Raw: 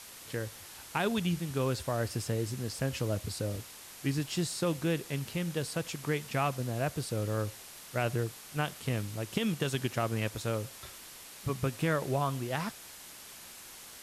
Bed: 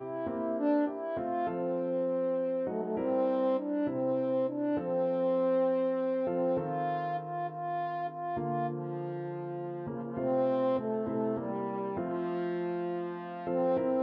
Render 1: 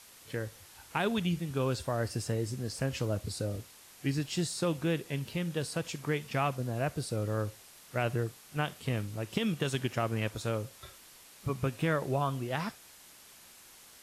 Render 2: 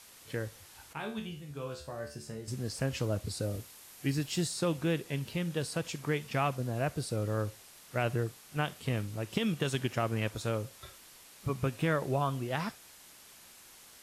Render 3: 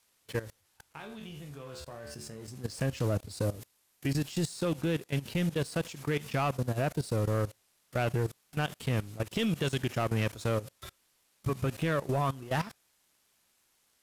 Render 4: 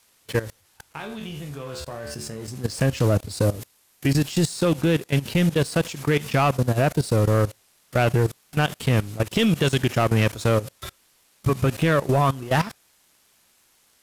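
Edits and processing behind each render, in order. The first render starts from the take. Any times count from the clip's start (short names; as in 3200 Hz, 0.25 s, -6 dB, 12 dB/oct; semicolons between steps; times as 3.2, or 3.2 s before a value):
noise print and reduce 6 dB
0.93–2.48 resonator 73 Hz, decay 0.37 s, mix 90%; 3.42–4.48 high shelf 12000 Hz +8.5 dB
level quantiser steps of 17 dB; sample leveller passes 2
gain +10 dB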